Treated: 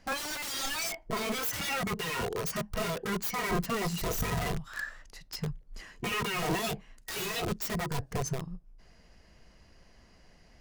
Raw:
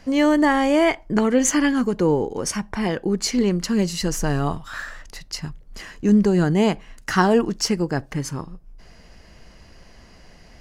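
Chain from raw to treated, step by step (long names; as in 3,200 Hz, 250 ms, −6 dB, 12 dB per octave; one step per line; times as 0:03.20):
wrap-around overflow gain 22 dB
noise reduction from a noise print of the clip's start 11 dB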